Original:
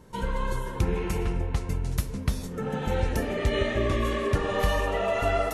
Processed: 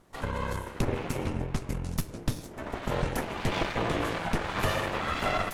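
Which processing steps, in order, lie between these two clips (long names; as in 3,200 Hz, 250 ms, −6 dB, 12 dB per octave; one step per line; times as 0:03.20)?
full-wave rectification
harmonic generator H 7 −24 dB, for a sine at −13 dBFS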